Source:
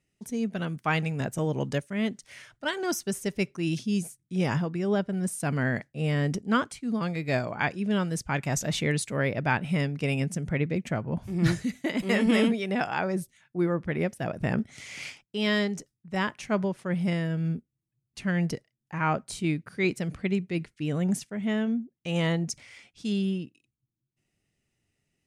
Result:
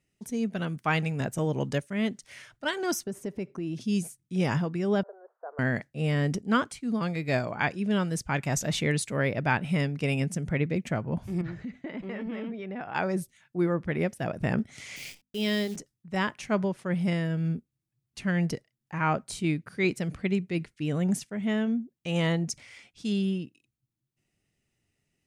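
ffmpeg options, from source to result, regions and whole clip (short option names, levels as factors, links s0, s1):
-filter_complex "[0:a]asettb=1/sr,asplit=3[s0][s1][s2];[s0]atrim=end=3.044[s3];[s1]atrim=start=3.04:end=3.81,asetpts=PTS-STARTPTS,afade=t=in:d=0.004:c=qsin,afade=t=out:st=0.766:d=0.004:c=qsin,highpass=f=260:p=1,tiltshelf=f=1400:g=9,acompressor=threshold=0.0282:ratio=4:attack=3.2:release=140:knee=1:detection=peak[s4];[s2]atrim=start=3.806[s5];[s3][s4]acrossfade=d=0.004:c1=hsin:c2=qsin[s6];[s6][s5]acrossfade=d=0.004:c1=qsin:c2=hsin,asettb=1/sr,asplit=3[s7][s8][s9];[s7]atrim=end=5.034[s10];[s8]atrim=start=5.03:end=5.59,asetpts=PTS-STARTPTS,afade=t=in:d=0.004:c=qsin,afade=t=out:st=0.556:d=0.004:c=qsin,acompressor=threshold=0.00708:ratio=4:attack=3.2:release=140:knee=1:detection=peak,asuperpass=centerf=790:order=12:qfactor=0.7,equalizer=f=640:t=o:w=1.6:g=11[s11];[s9]atrim=start=5.586[s12];[s10][s11]acrossfade=d=0.004:c1=hsin:c2=qsin[s13];[s13][s12]acrossfade=d=0.004:c1=qsin:c2=hsin,asettb=1/sr,asplit=3[s14][s15][s16];[s14]atrim=end=11.414[s17];[s15]atrim=start=11.41:end=12.95,asetpts=PTS-STARTPTS,afade=t=in:d=0.004:c=qsin,afade=t=out:st=1.536:d=0.004:c=qsin,lowpass=2100,acompressor=threshold=0.02:ratio=4:attack=3.2:release=140:knee=1:detection=peak[s18];[s16]atrim=start=12.946[s19];[s17][s18]acrossfade=d=0.004:c1=hsin:c2=qsin[s20];[s20][s19]acrossfade=d=0.004:c1=qsin:c2=hsin,asettb=1/sr,asplit=3[s21][s22][s23];[s21]atrim=end=14.964[s24];[s22]atrim=start=14.96:end=15.76,asetpts=PTS-STARTPTS,afade=t=in:d=0.004:c=qsin,afade=t=out:st=0.796:d=0.004:c=qsin,acrusher=bits=8:dc=4:mix=0:aa=0.000001,equalizer=f=1200:w=1:g=-10.5,bandreject=f=50:t=h:w=6,bandreject=f=100:t=h:w=6,bandreject=f=150:t=h:w=6,bandreject=f=200:t=h:w=6,bandreject=f=250:t=h:w=6[s25];[s23]atrim=start=15.756[s26];[s24][s25]acrossfade=d=0.004:c1=hsin:c2=qsin[s27];[s27][s26]acrossfade=d=0.004:c1=qsin:c2=hsin"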